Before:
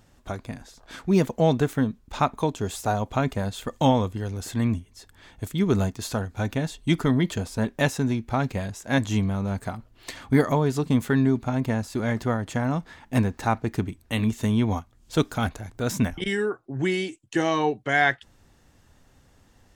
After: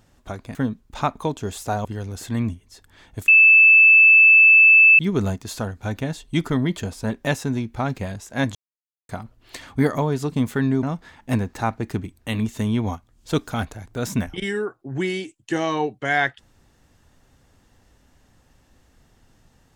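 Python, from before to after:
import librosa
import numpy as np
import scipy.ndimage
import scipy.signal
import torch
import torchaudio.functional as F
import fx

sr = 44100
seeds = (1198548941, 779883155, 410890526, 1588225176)

y = fx.edit(x, sr, fx.cut(start_s=0.55, length_s=1.18),
    fx.cut(start_s=3.03, length_s=1.07),
    fx.insert_tone(at_s=5.53, length_s=1.71, hz=2630.0, db=-8.0),
    fx.silence(start_s=9.09, length_s=0.54),
    fx.cut(start_s=11.37, length_s=1.3), tone=tone)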